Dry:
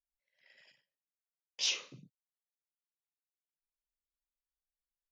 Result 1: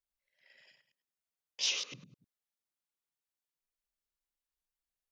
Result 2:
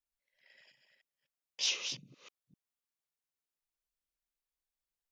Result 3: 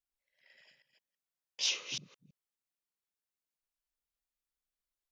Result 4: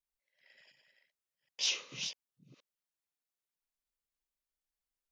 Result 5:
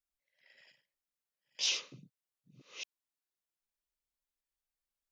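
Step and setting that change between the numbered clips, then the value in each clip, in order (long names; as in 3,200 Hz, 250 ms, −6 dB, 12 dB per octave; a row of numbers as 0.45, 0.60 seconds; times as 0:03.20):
delay that plays each chunk backwards, delay time: 102, 254, 165, 372, 567 milliseconds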